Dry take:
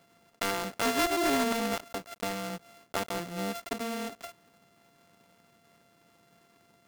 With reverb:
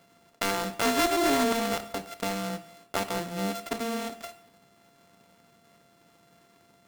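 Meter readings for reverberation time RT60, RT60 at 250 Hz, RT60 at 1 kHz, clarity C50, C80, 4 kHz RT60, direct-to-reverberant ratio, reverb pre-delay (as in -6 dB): 0.65 s, 0.65 s, 0.65 s, 13.5 dB, 16.5 dB, 0.60 s, 10.0 dB, 8 ms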